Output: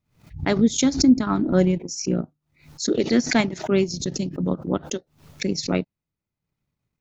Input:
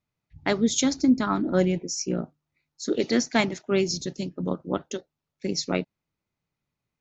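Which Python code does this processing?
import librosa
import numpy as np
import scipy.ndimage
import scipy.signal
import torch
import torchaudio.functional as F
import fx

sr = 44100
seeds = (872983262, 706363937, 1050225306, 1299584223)

y = fx.low_shelf(x, sr, hz=270.0, db=8.0)
y = fx.transient(y, sr, attack_db=0, sustain_db=-7)
y = fx.pre_swell(y, sr, db_per_s=130.0)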